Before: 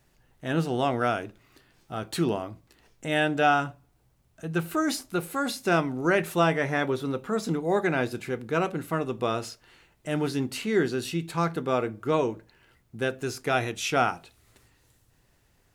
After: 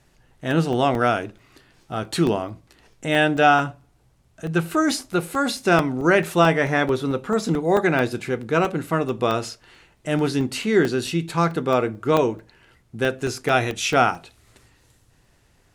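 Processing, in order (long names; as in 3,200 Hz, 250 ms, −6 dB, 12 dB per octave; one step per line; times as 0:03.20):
low-pass filter 11,000 Hz 12 dB per octave
regular buffer underruns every 0.22 s, samples 64, zero, from 0:00.51
level +6 dB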